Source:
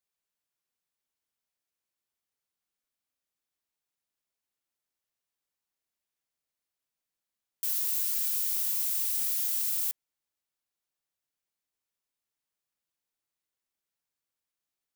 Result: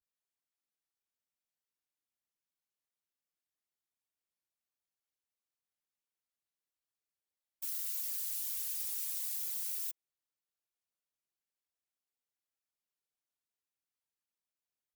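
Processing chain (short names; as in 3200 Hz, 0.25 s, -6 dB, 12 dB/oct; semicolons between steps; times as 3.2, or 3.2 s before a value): vibrato 0.43 Hz 100 cents; whisperiser; gain -7.5 dB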